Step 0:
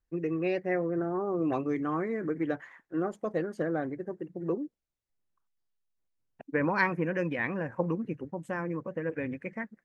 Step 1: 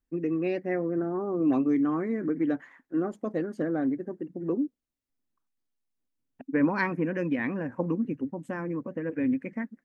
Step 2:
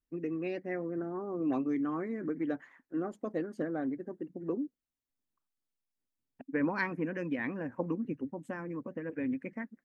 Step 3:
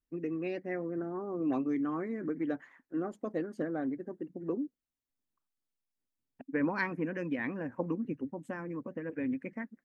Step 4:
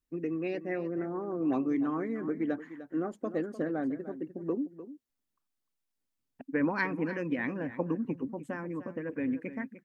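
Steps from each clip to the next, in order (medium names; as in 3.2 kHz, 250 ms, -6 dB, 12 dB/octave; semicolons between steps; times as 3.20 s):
peaking EQ 260 Hz +14 dB 0.51 oct; trim -2 dB
harmonic-percussive split percussive +4 dB; trim -7.5 dB
no audible change
delay 301 ms -13.5 dB; trim +2 dB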